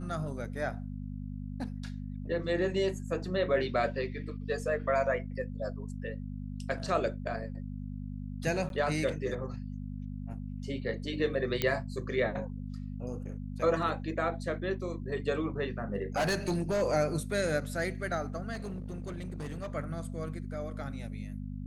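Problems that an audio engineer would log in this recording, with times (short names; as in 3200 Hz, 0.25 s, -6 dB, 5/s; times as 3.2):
hum 50 Hz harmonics 5 -39 dBFS
8.69–8.7 gap 12 ms
11.62 pop -13 dBFS
15.94–16.83 clipped -25 dBFS
18.53–19.74 clipped -34 dBFS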